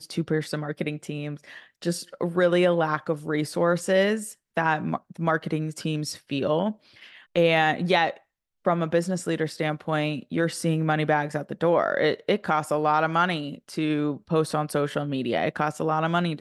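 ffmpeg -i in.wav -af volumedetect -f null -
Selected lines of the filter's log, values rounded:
mean_volume: -25.4 dB
max_volume: -7.1 dB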